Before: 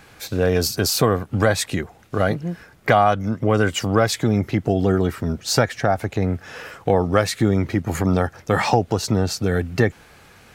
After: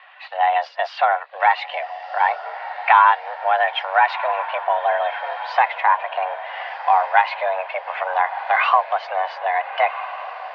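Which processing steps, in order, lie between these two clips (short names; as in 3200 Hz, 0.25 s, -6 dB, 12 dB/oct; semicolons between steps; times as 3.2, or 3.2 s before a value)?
bin magnitudes rounded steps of 15 dB; diffused feedback echo 1.36 s, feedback 44%, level -11.5 dB; mistuned SSB +280 Hz 390–3000 Hz; gain +4 dB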